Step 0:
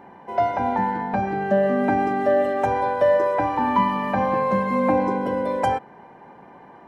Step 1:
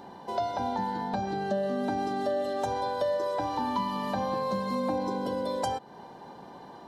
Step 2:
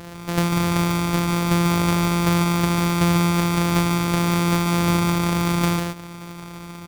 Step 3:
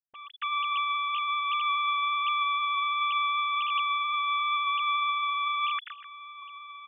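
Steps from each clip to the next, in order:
resonant high shelf 3 kHz +9.5 dB, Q 3; compression 2.5:1, threshold -31 dBFS, peak gain reduction 11 dB
sorted samples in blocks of 256 samples; delay 146 ms -4.5 dB; trim +8.5 dB
formants replaced by sine waves; trim -8.5 dB

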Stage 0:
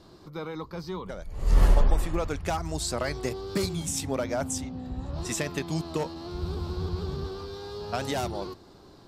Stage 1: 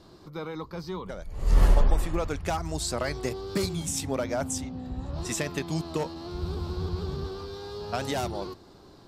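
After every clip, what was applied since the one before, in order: no audible change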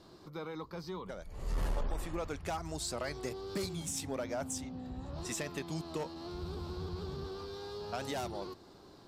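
bass shelf 120 Hz -6 dB; in parallel at -1.5 dB: compression, threshold -38 dBFS, peak gain reduction 18 dB; on the sum: saturation -17.5 dBFS, distortion -18 dB; trim -8.5 dB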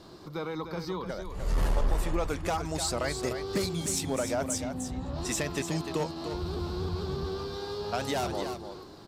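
delay 300 ms -8.5 dB; trim +7 dB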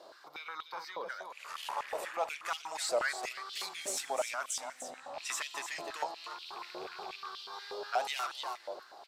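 rattle on loud lows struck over -31 dBFS, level -36 dBFS; reverberation RT60 2.4 s, pre-delay 4 ms, DRR 16 dB; step-sequenced high-pass 8.3 Hz 590–3100 Hz; trim -5.5 dB

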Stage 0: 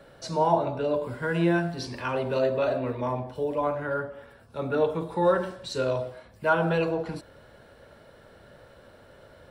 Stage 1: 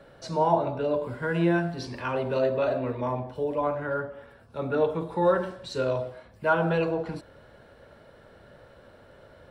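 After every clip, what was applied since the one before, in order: treble shelf 4.7 kHz -6.5 dB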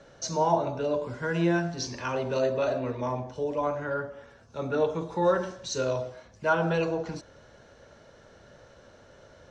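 resonant low-pass 6.3 kHz, resonance Q 9.5; trim -1.5 dB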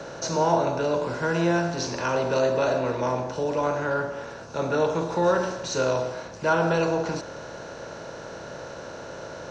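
spectral levelling over time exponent 0.6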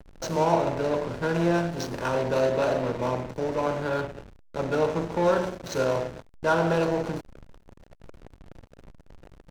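hysteresis with a dead band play -24.5 dBFS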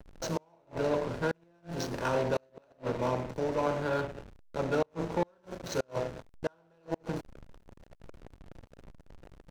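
inverted gate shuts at -15 dBFS, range -38 dB; trim -3 dB

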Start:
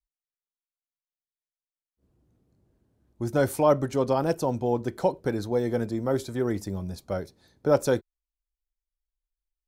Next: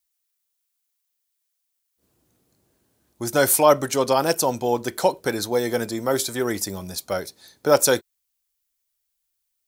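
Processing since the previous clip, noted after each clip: tilt EQ +3.5 dB/octave; trim +7.5 dB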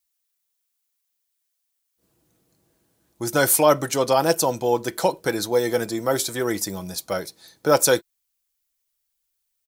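comb 6.1 ms, depth 32%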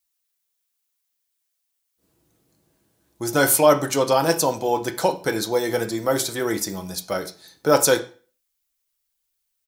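reverberation RT60 0.40 s, pre-delay 4 ms, DRR 6.5 dB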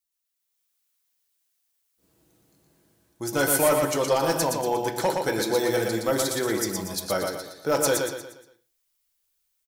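level rider gain up to 8 dB; hard clipper -8.5 dBFS, distortion -17 dB; feedback delay 118 ms, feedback 41%, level -4 dB; trim -7.5 dB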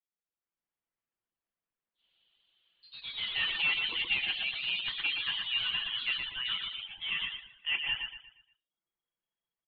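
frequency inversion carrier 3.3 kHz; ever faster or slower copies 187 ms, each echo +2 st, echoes 3, each echo -6 dB; reverb removal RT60 0.51 s; trim -8.5 dB

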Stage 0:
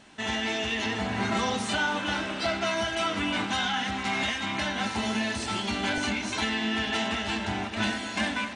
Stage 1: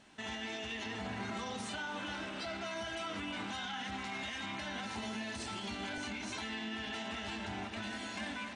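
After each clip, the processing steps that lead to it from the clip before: peak limiter -24.5 dBFS, peak gain reduction 9.5 dB; trim -7.5 dB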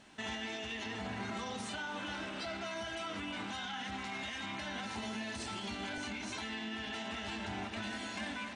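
gain riding 0.5 s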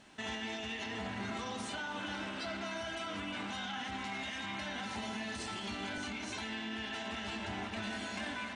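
spring tank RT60 3.3 s, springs 50/57 ms, chirp 65 ms, DRR 7.5 dB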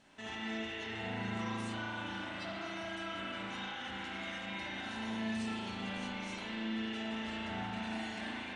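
spring tank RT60 2.5 s, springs 36 ms, chirp 35 ms, DRR -5 dB; trim -6.5 dB

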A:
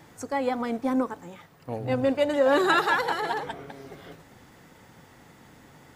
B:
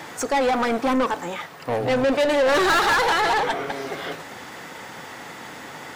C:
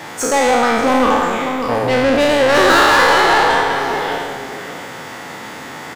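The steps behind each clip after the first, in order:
saturation -12 dBFS, distortion -24 dB; overdrive pedal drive 25 dB, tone 5.6 kHz, clips at -13 dBFS
spectral sustain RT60 1.58 s; echo from a far wall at 100 m, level -7 dB; trim +3.5 dB

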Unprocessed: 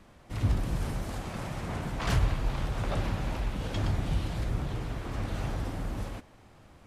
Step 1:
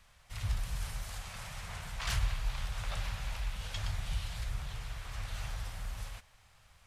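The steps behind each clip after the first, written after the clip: amplifier tone stack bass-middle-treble 10-0-10; trim +2 dB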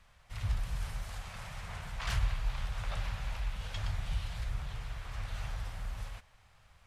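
treble shelf 3.8 kHz -8 dB; trim +1 dB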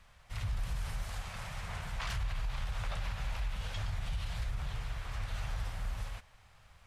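peak limiter -30 dBFS, peak gain reduction 10 dB; trim +2 dB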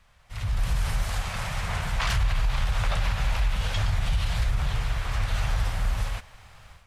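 level rider gain up to 11.5 dB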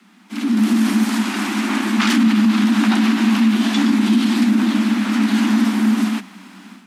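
frequency shift +180 Hz; trim +8.5 dB

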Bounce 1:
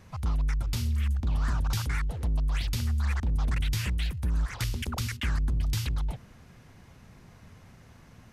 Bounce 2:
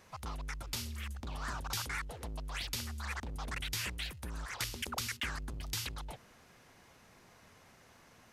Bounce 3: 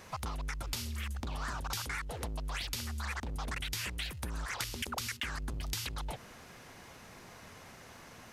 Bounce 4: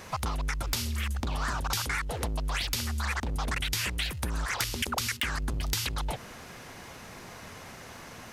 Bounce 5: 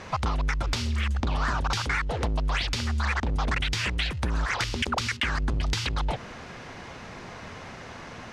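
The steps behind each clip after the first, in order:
tone controls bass -14 dB, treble +2 dB; trim -2 dB
compression, threshold -43 dBFS, peak gain reduction 10.5 dB; trim +8.5 dB
integer overflow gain 22 dB; trim +7 dB
distance through air 110 m; trim +5 dB

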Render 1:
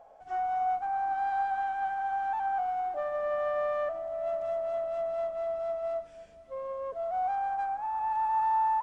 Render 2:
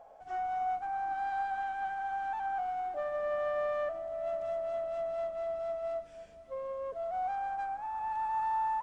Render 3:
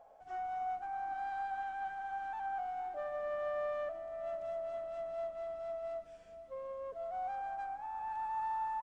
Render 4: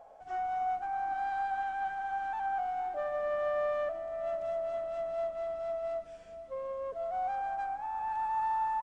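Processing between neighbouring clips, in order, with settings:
dynamic bell 920 Hz, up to -5 dB, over -42 dBFS, Q 1.2
echo from a far wall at 83 m, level -15 dB; trim -5 dB
resampled via 22.05 kHz; trim +5.5 dB

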